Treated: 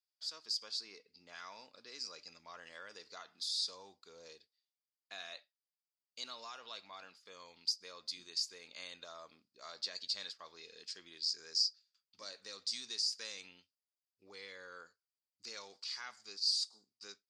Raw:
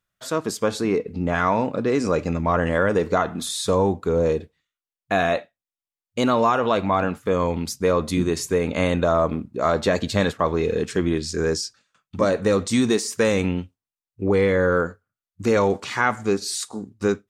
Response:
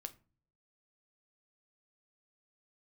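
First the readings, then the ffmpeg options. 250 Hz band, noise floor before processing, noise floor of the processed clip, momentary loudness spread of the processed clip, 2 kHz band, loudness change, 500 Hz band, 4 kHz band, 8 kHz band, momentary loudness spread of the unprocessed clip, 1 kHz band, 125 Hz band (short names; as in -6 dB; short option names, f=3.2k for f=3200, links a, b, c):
under -40 dB, under -85 dBFS, under -85 dBFS, 20 LU, -24.0 dB, -17.0 dB, -36.5 dB, -4.0 dB, -14.0 dB, 7 LU, -30.0 dB, under -40 dB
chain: -af "bandpass=f=4.8k:t=q:w=11:csg=0,volume=4dB"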